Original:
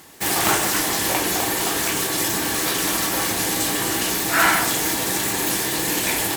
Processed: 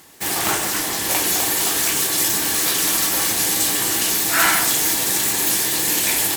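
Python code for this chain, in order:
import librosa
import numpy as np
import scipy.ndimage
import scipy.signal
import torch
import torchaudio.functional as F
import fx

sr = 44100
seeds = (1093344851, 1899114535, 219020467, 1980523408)

y = fx.high_shelf(x, sr, hz=2600.0, db=fx.steps((0.0, 3.0), (1.09, 8.5)))
y = F.gain(torch.from_numpy(y), -3.0).numpy()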